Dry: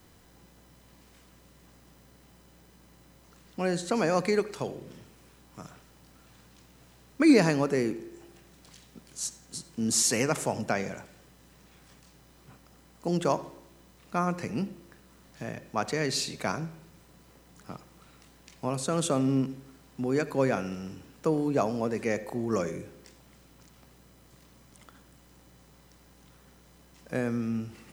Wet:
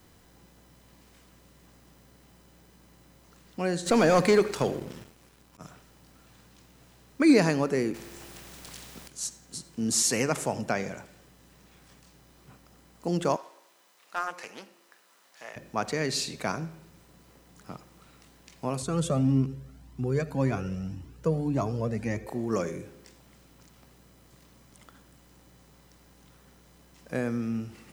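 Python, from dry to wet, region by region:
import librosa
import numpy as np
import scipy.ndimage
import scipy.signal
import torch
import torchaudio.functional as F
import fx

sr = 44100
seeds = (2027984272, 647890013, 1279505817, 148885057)

y = fx.chain(x, sr, fx.leveller(passes=2),
    fx.auto_swell(attack_ms=178.0), at=(3.86, 5.61))
y = fx.chain(y, sr, fx.low_shelf(hz=200.0, db=10.0),
    fx.spectral_comp(ratio=2.0), at=(7.94, 9.08))
y = fx.chain(y, sr, fx.highpass(hz=710.0, slope=12),
    fx.doppler_dist(depth_ms=0.19), at=(13.36, 15.56))
y = fx.chain(y, sr, fx.peak_eq(hz=82.0, db=14.0, octaves=2.7),
    fx.comb_cascade(direction='rising', hz=1.8), at=(18.82, 22.27))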